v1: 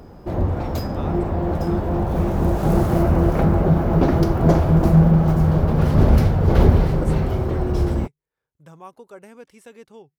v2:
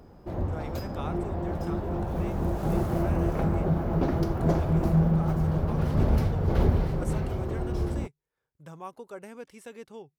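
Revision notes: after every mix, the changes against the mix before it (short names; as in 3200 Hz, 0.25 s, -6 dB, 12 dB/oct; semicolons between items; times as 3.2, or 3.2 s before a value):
background -9.0 dB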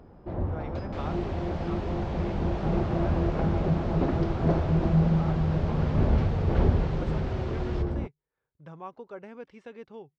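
second sound: unmuted; master: add Gaussian blur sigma 2.1 samples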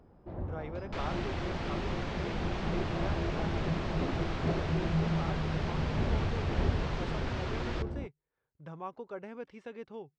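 first sound -8.0 dB; second sound +5.5 dB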